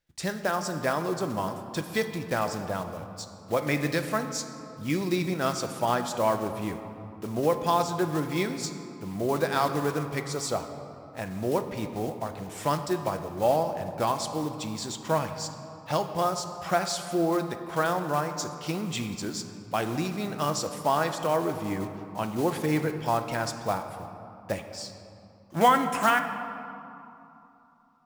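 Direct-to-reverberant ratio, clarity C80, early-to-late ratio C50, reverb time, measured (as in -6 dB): 6.5 dB, 9.5 dB, 8.5 dB, 3.0 s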